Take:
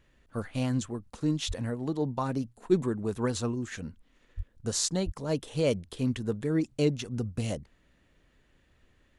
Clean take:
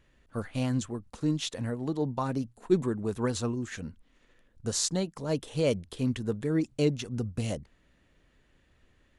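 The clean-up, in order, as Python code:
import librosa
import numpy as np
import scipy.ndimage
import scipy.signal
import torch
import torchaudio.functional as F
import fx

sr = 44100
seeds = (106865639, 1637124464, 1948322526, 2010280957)

y = fx.highpass(x, sr, hz=140.0, slope=24, at=(1.47, 1.59), fade=0.02)
y = fx.highpass(y, sr, hz=140.0, slope=24, at=(4.36, 4.48), fade=0.02)
y = fx.highpass(y, sr, hz=140.0, slope=24, at=(5.05, 5.17), fade=0.02)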